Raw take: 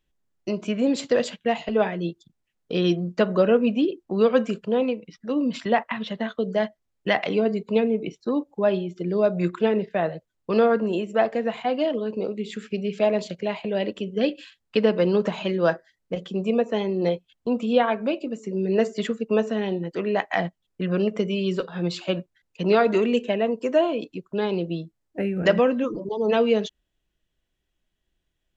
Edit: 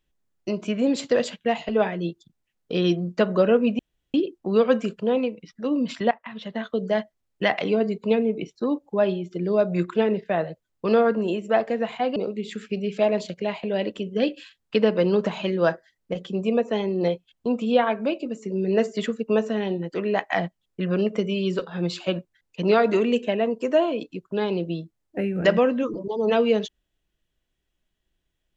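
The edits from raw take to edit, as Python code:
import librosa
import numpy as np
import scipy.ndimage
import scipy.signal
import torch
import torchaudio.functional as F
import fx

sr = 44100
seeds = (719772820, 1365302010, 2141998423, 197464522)

y = fx.edit(x, sr, fx.insert_room_tone(at_s=3.79, length_s=0.35),
    fx.fade_in_from(start_s=5.76, length_s=0.6, floor_db=-19.0),
    fx.cut(start_s=11.81, length_s=0.36), tone=tone)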